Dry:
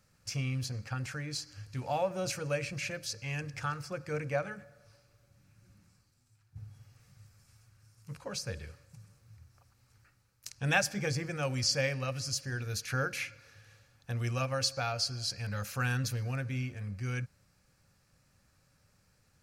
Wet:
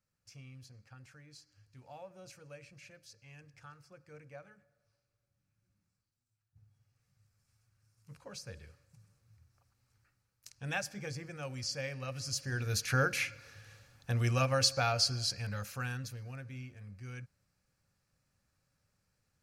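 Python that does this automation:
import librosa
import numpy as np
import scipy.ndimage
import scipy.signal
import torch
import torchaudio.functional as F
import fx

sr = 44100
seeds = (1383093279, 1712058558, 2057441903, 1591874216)

y = fx.gain(x, sr, db=fx.line((6.73, -18.0), (8.16, -8.5), (11.83, -8.5), (12.74, 3.0), (15.12, 3.0), (16.13, -10.0)))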